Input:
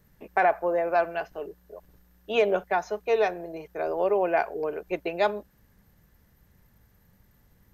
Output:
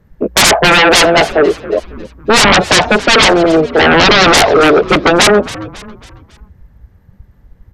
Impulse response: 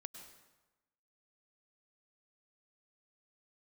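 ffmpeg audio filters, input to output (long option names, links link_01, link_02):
-filter_complex "[0:a]lowpass=frequency=1300:poles=1,afftdn=noise_reduction=20:noise_floor=-41,aeval=exprs='0.224*sin(PI/2*8.91*val(0)/0.224)':channel_layout=same,asplit=2[link_01][link_02];[link_02]asplit=4[link_03][link_04][link_05][link_06];[link_03]adelay=274,afreqshift=-99,volume=-17dB[link_07];[link_04]adelay=548,afreqshift=-198,volume=-23.9dB[link_08];[link_05]adelay=822,afreqshift=-297,volume=-30.9dB[link_09];[link_06]adelay=1096,afreqshift=-396,volume=-37.8dB[link_10];[link_07][link_08][link_09][link_10]amix=inputs=4:normalize=0[link_11];[link_01][link_11]amix=inputs=2:normalize=0,volume=9dB"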